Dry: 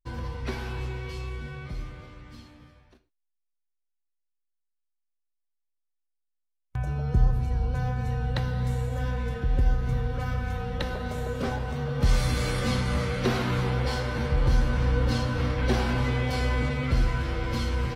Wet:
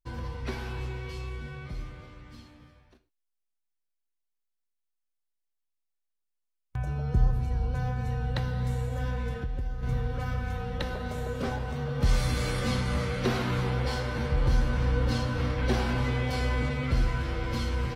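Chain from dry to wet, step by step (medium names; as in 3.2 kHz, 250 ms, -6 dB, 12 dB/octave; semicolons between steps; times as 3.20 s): 9.33–9.83 s: compression 6:1, threshold -27 dBFS, peak gain reduction 10 dB; trim -2 dB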